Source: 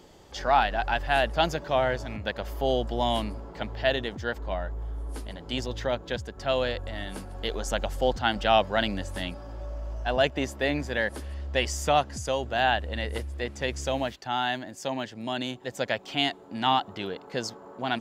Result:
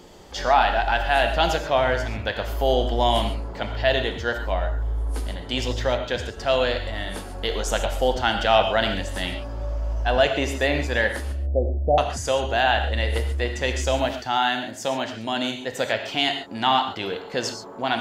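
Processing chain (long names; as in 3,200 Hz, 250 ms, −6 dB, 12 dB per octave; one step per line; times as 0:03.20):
0:11.32–0:11.98: Butterworth low-pass 740 Hz 72 dB per octave
dynamic equaliser 180 Hz, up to −6 dB, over −45 dBFS, Q 1.1
in parallel at −1 dB: brickwall limiter −17 dBFS, peak gain reduction 8 dB
on the sum: convolution reverb, pre-delay 3 ms, DRR 5 dB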